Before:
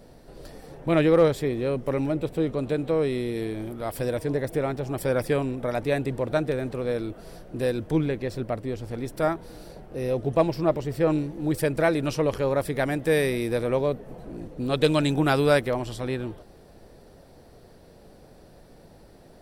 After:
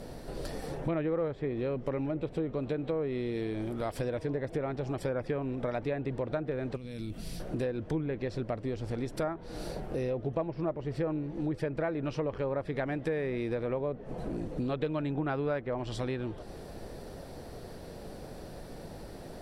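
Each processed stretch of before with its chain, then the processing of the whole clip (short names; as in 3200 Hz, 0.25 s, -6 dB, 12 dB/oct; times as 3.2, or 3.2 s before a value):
6.76–7.4 compressor 10:1, threshold -34 dBFS + band shelf 770 Hz -13 dB 2.6 oct
whole clip: treble ducked by the level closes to 1900 Hz, closed at -20 dBFS; compressor 4:1, threshold -39 dBFS; gain +6.5 dB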